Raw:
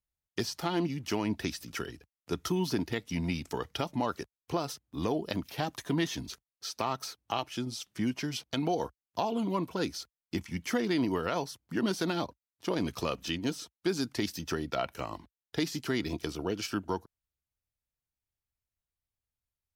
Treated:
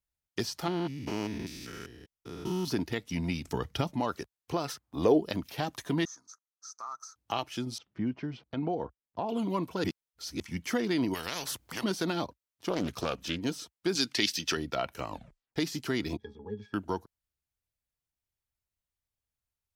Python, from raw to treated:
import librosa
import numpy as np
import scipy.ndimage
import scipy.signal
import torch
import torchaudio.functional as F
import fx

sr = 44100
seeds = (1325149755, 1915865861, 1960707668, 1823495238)

y = fx.spec_steps(x, sr, hold_ms=200, at=(0.68, 2.68))
y = fx.bass_treble(y, sr, bass_db=8, treble_db=0, at=(3.44, 3.91))
y = fx.peak_eq(y, sr, hz=fx.line((4.64, 2100.0), (5.18, 350.0)), db=11.0, octaves=1.1, at=(4.64, 5.18), fade=0.02)
y = fx.double_bandpass(y, sr, hz=2800.0, octaves=2.3, at=(6.05, 7.16))
y = fx.spacing_loss(y, sr, db_at_10k=41, at=(7.78, 9.29))
y = fx.spectral_comp(y, sr, ratio=4.0, at=(11.13, 11.83), fade=0.02)
y = fx.doppler_dist(y, sr, depth_ms=0.37, at=(12.69, 13.41))
y = fx.weighting(y, sr, curve='D', at=(13.95, 14.57))
y = fx.octave_resonator(y, sr, note='G#', decay_s=0.1, at=(16.17, 16.74))
y = fx.edit(y, sr, fx.reverse_span(start_s=9.84, length_s=0.56),
    fx.tape_stop(start_s=15.09, length_s=0.47), tone=tone)